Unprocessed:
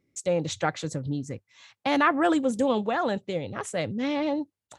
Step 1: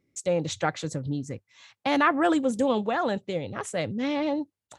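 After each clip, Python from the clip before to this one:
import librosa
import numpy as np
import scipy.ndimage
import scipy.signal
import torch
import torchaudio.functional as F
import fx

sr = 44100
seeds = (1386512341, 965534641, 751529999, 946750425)

y = x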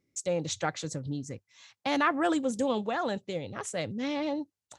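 y = fx.peak_eq(x, sr, hz=6000.0, db=6.0, octaves=1.2)
y = y * librosa.db_to_amplitude(-4.5)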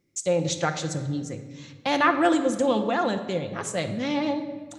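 y = fx.room_shoebox(x, sr, seeds[0], volume_m3=1700.0, walls='mixed', distance_m=0.85)
y = y * librosa.db_to_amplitude(4.5)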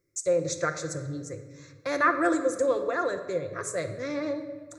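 y = fx.fixed_phaser(x, sr, hz=820.0, stages=6)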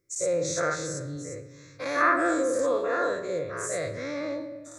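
y = fx.spec_dilate(x, sr, span_ms=120)
y = y * librosa.db_to_amplitude(-5.0)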